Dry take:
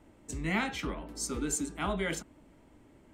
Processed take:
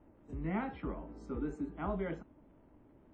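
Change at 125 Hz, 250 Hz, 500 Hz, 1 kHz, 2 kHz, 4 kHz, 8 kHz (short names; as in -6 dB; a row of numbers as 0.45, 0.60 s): -3.0 dB, -3.0 dB, -3.0 dB, -5.0 dB, -13.0 dB, under -20 dB, under -35 dB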